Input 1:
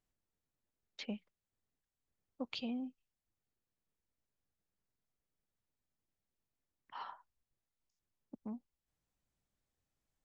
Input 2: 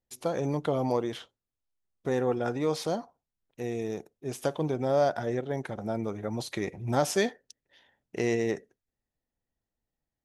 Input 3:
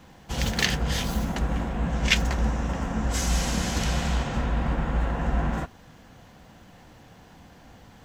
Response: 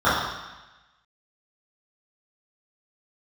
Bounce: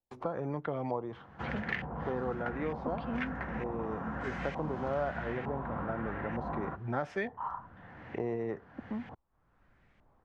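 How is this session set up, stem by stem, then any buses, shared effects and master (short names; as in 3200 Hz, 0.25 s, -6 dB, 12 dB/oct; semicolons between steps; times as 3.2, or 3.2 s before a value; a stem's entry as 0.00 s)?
+0.5 dB, 0.45 s, no send, dry
-8.5 dB, 0.00 s, no send, gate with hold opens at -49 dBFS
-4.0 dB, 1.10 s, no send, HPF 73 Hz 24 dB/oct; auto duck -9 dB, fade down 1.75 s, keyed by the second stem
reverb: off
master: LFO low-pass saw up 1.1 Hz 890–2200 Hz; three-band squash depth 70%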